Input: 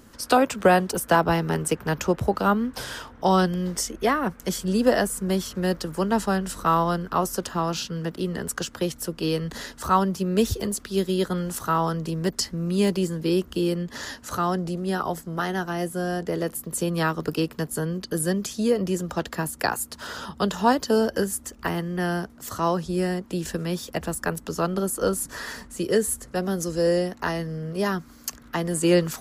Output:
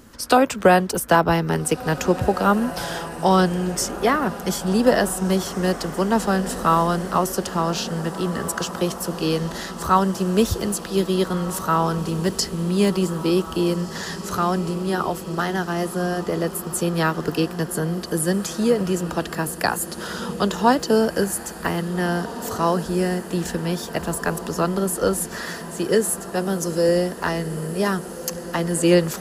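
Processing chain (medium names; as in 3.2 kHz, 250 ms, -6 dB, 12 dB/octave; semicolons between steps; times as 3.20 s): 25.41–26.89 s: high-pass 120 Hz; echo that smears into a reverb 1727 ms, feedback 63%, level -13 dB; trim +3 dB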